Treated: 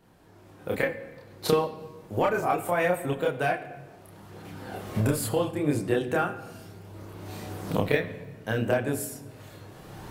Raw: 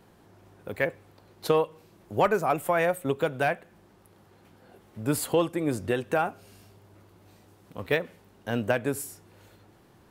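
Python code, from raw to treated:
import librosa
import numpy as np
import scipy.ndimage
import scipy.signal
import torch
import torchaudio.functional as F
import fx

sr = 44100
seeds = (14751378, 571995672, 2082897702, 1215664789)

y = fx.recorder_agc(x, sr, target_db=-12.0, rise_db_per_s=14.0, max_gain_db=30)
y = fx.chorus_voices(y, sr, voices=2, hz=0.34, base_ms=29, depth_ms=2.0, mix_pct=50)
y = fx.room_shoebox(y, sr, seeds[0], volume_m3=1100.0, walls='mixed', distance_m=0.52)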